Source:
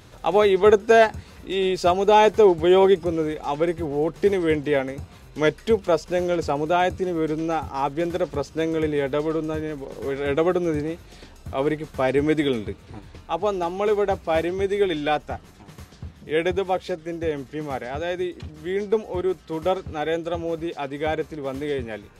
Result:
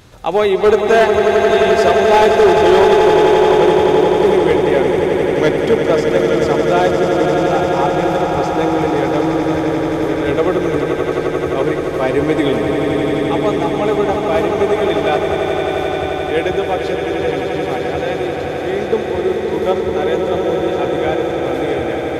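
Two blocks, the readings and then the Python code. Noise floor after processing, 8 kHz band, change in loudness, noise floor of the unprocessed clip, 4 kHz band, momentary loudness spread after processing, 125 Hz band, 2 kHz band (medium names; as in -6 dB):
-21 dBFS, no reading, +8.0 dB, -47 dBFS, +8.5 dB, 8 LU, +9.0 dB, +9.0 dB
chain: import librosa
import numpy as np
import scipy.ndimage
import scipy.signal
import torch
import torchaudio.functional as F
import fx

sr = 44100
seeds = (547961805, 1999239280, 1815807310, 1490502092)

y = fx.echo_swell(x, sr, ms=87, loudest=8, wet_db=-8.5)
y = np.clip(10.0 ** (9.0 / 20.0) * y, -1.0, 1.0) / 10.0 ** (9.0 / 20.0)
y = F.gain(torch.from_numpy(y), 4.0).numpy()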